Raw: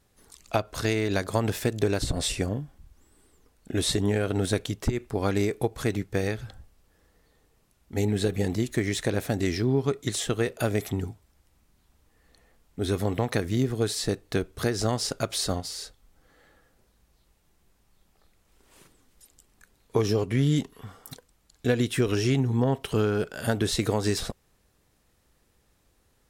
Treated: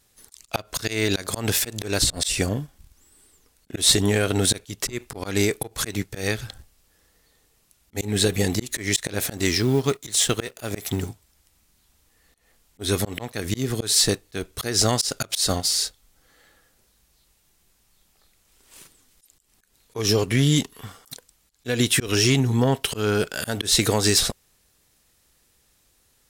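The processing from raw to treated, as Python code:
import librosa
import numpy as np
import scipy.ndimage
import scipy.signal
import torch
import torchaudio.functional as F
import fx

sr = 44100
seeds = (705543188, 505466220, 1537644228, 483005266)

y = fx.law_mismatch(x, sr, coded='A', at=(9.37, 11.09))
y = fx.high_shelf(y, sr, hz=2100.0, db=12.0)
y = fx.auto_swell(y, sr, attack_ms=158.0)
y = fx.leveller(y, sr, passes=1)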